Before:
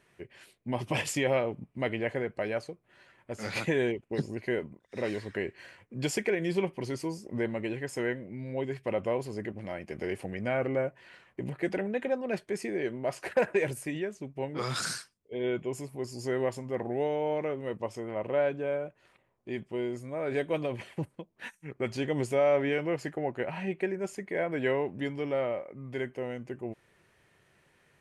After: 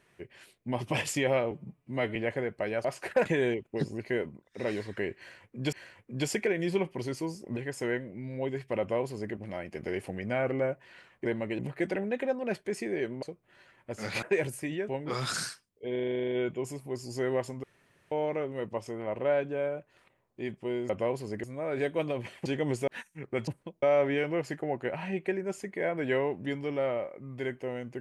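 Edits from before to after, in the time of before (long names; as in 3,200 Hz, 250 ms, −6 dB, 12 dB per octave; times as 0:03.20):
0:01.51–0:01.94: time-stretch 1.5×
0:02.63–0:03.63: swap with 0:13.05–0:13.46
0:05.55–0:06.10: repeat, 2 plays
0:07.39–0:07.72: move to 0:11.41
0:08.95–0:09.49: duplicate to 0:19.98
0:14.12–0:14.37: remove
0:15.40: stutter 0.04 s, 11 plays
0:16.72–0:17.20: fill with room tone
0:21.00–0:21.35: swap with 0:21.95–0:22.37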